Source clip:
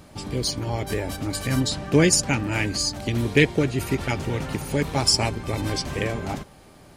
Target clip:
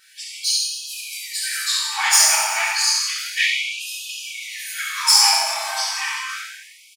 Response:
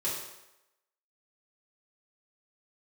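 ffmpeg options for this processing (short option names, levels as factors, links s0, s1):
-filter_complex "[0:a]asettb=1/sr,asplit=3[s0][s1][s2];[s0]atrim=end=3.324[s3];[s1]atrim=start=3.32:end=3.86,asetpts=PTS-STARTPTS,afade=t=in:d=0.004:c=qsin,afade=t=out:st=0.536:d=0.004:c=qsin,equalizer=f=13000:w=1.2:g=-9.5[s4];[s2]atrim=start=3.856[s5];[s3][s4]acrossfade=d=0.004:c1=hsin:c2=qsin[s6];[s6][s5]acrossfade=d=0.004:c1=qsin:c2=hsin,aeval=exprs='(tanh(2.82*val(0)+0.65)-tanh(0.65))/2.82':c=same,aecho=1:1:70|154|254.8|375.8|520.9:0.631|0.398|0.251|0.158|0.1[s7];[1:a]atrim=start_sample=2205[s8];[s7][s8]afir=irnorm=-1:irlink=0,afftfilt=real='re*gte(b*sr/1024,610*pow(2500/610,0.5+0.5*sin(2*PI*0.31*pts/sr)))':imag='im*gte(b*sr/1024,610*pow(2500/610,0.5+0.5*sin(2*PI*0.31*pts/sr)))':win_size=1024:overlap=0.75,volume=1.78"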